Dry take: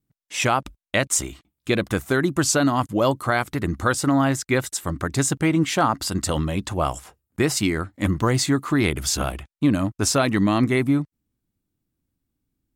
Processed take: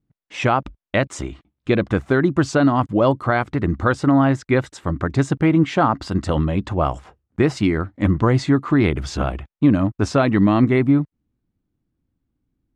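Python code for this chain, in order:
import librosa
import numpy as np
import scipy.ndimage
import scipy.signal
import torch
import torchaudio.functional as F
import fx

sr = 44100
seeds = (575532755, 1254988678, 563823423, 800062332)

y = fx.spacing_loss(x, sr, db_at_10k=27)
y = F.gain(torch.from_numpy(y), 5.0).numpy()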